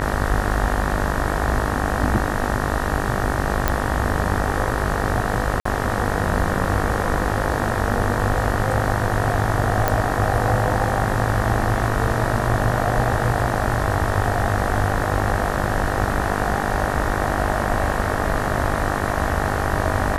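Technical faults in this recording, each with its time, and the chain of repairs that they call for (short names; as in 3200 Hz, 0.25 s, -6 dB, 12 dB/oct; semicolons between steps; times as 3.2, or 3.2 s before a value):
buzz 50 Hz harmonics 38 -25 dBFS
3.68 pop -3 dBFS
5.6–5.65 gap 54 ms
9.88 pop -4 dBFS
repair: de-click; de-hum 50 Hz, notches 38; interpolate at 5.6, 54 ms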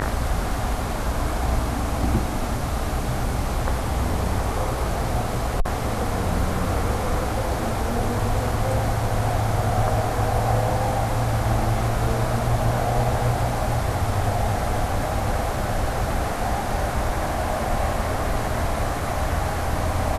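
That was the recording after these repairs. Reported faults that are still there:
none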